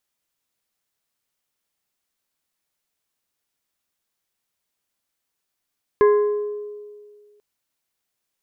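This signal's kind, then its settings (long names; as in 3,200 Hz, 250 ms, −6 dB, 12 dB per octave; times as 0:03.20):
struck glass plate, length 1.39 s, lowest mode 416 Hz, modes 4, decay 1.90 s, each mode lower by 9 dB, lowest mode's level −10 dB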